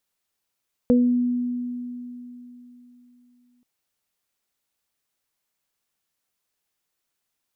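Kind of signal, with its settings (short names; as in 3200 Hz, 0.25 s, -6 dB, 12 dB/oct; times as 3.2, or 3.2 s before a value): additive tone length 2.73 s, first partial 245 Hz, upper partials -2 dB, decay 3.48 s, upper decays 0.35 s, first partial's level -13.5 dB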